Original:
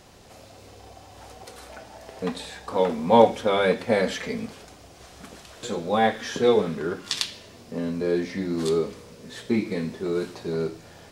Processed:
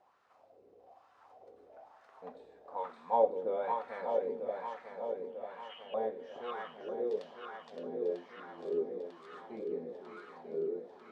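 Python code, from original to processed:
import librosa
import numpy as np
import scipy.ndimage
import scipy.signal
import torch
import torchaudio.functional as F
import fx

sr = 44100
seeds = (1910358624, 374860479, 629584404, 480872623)

y = fx.freq_invert(x, sr, carrier_hz=3400, at=(5.29, 5.94))
y = fx.echo_swing(y, sr, ms=946, ratio=1.5, feedback_pct=59, wet_db=-5.0)
y = fx.wah_lfo(y, sr, hz=1.1, low_hz=400.0, high_hz=1300.0, q=3.4)
y = y * 10.0 ** (-7.5 / 20.0)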